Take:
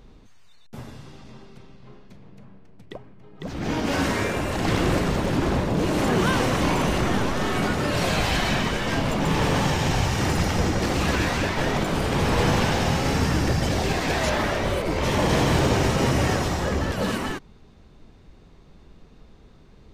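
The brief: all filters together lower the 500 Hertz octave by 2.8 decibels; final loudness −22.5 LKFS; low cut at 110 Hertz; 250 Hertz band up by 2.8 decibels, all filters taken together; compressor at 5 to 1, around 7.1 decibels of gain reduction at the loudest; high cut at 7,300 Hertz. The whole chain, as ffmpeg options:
ffmpeg -i in.wav -af "highpass=110,lowpass=7300,equalizer=frequency=250:width_type=o:gain=5.5,equalizer=frequency=500:width_type=o:gain=-5.5,acompressor=threshold=-25dB:ratio=5,volume=6dB" out.wav

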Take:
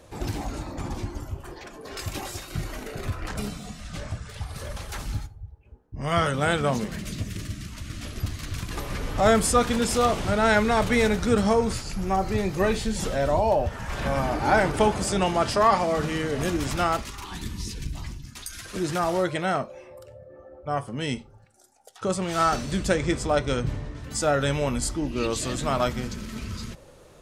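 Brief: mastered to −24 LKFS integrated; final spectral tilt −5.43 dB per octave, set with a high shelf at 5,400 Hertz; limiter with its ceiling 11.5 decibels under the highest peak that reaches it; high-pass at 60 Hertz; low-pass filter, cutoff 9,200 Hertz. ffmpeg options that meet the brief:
ffmpeg -i in.wav -af "highpass=60,lowpass=9200,highshelf=frequency=5400:gain=-6.5,volume=6dB,alimiter=limit=-12dB:level=0:latency=1" out.wav

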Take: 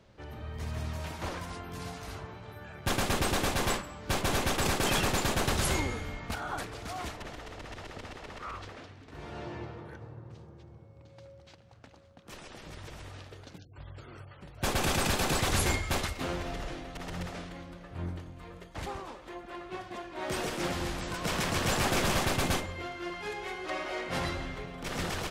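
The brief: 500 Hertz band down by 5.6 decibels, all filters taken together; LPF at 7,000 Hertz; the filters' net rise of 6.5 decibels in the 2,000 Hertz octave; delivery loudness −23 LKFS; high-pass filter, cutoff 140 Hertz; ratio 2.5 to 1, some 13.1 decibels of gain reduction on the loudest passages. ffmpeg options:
ffmpeg -i in.wav -af "highpass=140,lowpass=7000,equalizer=frequency=500:width_type=o:gain=-8,equalizer=frequency=2000:width_type=o:gain=8.5,acompressor=threshold=-45dB:ratio=2.5,volume=20dB" out.wav

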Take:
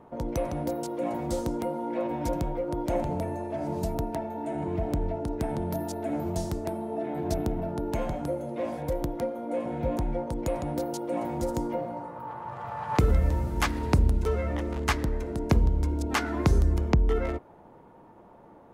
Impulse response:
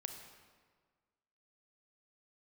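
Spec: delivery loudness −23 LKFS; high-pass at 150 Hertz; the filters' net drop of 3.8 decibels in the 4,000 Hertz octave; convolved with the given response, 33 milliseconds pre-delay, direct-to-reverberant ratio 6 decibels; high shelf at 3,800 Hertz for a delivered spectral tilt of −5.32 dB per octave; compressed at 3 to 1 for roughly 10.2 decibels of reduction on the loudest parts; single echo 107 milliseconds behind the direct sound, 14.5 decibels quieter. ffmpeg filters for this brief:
-filter_complex "[0:a]highpass=150,highshelf=frequency=3800:gain=4,equalizer=frequency=4000:width_type=o:gain=-8,acompressor=threshold=-34dB:ratio=3,aecho=1:1:107:0.188,asplit=2[link_01][link_02];[1:a]atrim=start_sample=2205,adelay=33[link_03];[link_02][link_03]afir=irnorm=-1:irlink=0,volume=-3.5dB[link_04];[link_01][link_04]amix=inputs=2:normalize=0,volume=13.5dB"

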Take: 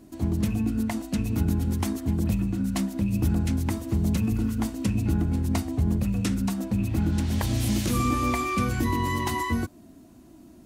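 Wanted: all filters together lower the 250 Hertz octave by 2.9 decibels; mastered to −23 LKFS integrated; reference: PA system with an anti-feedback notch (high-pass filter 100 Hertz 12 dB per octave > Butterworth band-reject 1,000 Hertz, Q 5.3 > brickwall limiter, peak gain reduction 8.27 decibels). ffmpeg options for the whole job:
ffmpeg -i in.wav -af "highpass=100,asuperstop=centerf=1000:order=8:qfactor=5.3,equalizer=frequency=250:width_type=o:gain=-3.5,volume=9dB,alimiter=limit=-14dB:level=0:latency=1" out.wav

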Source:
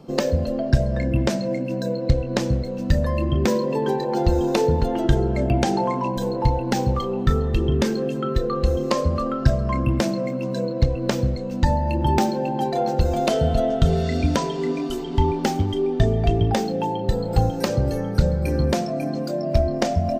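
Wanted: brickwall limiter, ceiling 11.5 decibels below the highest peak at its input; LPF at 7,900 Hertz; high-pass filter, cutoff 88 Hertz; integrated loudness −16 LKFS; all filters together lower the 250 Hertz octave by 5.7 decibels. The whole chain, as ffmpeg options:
ffmpeg -i in.wav -af "highpass=88,lowpass=7900,equalizer=frequency=250:width_type=o:gain=-8,volume=11dB,alimiter=limit=-5.5dB:level=0:latency=1" out.wav

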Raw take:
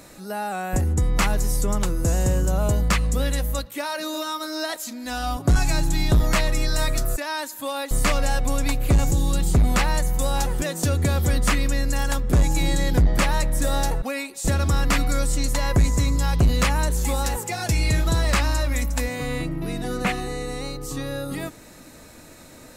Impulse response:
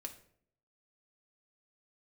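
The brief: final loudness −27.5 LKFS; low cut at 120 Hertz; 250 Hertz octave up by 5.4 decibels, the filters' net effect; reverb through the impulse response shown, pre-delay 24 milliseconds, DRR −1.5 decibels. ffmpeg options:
-filter_complex "[0:a]highpass=120,equalizer=frequency=250:width_type=o:gain=7.5,asplit=2[link_01][link_02];[1:a]atrim=start_sample=2205,adelay=24[link_03];[link_02][link_03]afir=irnorm=-1:irlink=0,volume=5dB[link_04];[link_01][link_04]amix=inputs=2:normalize=0,volume=-7dB"

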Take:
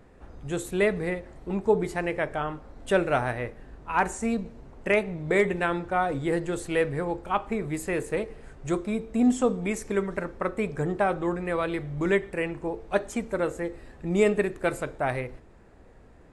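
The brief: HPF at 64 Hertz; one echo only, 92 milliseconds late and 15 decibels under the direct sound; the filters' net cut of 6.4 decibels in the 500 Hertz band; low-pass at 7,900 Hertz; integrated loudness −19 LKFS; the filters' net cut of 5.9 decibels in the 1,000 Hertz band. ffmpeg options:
ffmpeg -i in.wav -af "highpass=64,lowpass=7900,equalizer=frequency=500:width_type=o:gain=-7,equalizer=frequency=1000:width_type=o:gain=-5.5,aecho=1:1:92:0.178,volume=12.5dB" out.wav

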